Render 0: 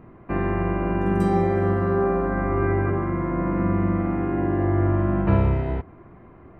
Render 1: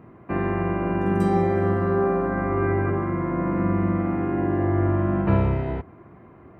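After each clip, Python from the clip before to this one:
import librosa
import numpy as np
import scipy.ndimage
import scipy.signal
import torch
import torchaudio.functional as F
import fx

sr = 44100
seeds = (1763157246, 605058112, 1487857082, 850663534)

y = scipy.signal.sosfilt(scipy.signal.butter(2, 75.0, 'highpass', fs=sr, output='sos'), x)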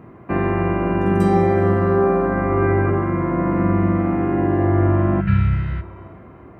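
y = fx.rev_schroeder(x, sr, rt60_s=2.3, comb_ms=32, drr_db=16.0)
y = fx.spec_repair(y, sr, seeds[0], start_s=5.23, length_s=0.75, low_hz=210.0, high_hz=1300.0, source='after')
y = F.gain(torch.from_numpy(y), 5.0).numpy()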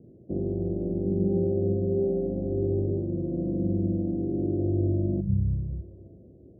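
y = scipy.signal.sosfilt(scipy.signal.butter(8, 570.0, 'lowpass', fs=sr, output='sos'), x)
y = F.gain(torch.from_numpy(y), -8.5).numpy()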